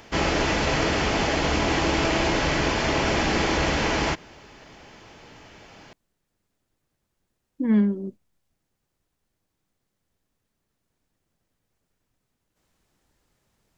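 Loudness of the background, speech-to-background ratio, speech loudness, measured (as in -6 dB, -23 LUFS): -23.0 LUFS, -0.5 dB, -23.5 LUFS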